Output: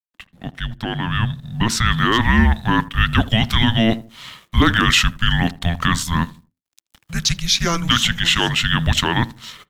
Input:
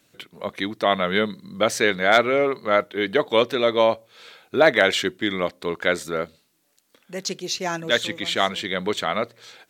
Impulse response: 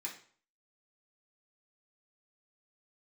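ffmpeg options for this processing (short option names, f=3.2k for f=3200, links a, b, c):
-filter_complex "[0:a]equalizer=f=770:w=0.5:g=-10.5,alimiter=limit=-17.5dB:level=0:latency=1:release=19,dynaudnorm=f=880:g=3:m=8dB,aeval=exprs='sgn(val(0))*max(abs(val(0))-0.00251,0)':c=same,asplit=2[a][b];[b]adelay=80,lowpass=f=1k:p=1,volume=-16.5dB,asplit=2[c][d];[d]adelay=80,lowpass=f=1k:p=1,volume=0.35,asplit=2[e][f];[f]adelay=80,lowpass=f=1k:p=1,volume=0.35[g];[a][c][e][g]amix=inputs=4:normalize=0,afreqshift=-340,asetnsamples=n=441:p=0,asendcmd='1.86 highshelf g -3',highshelf=f=4.5k:g=-10,volume=6.5dB"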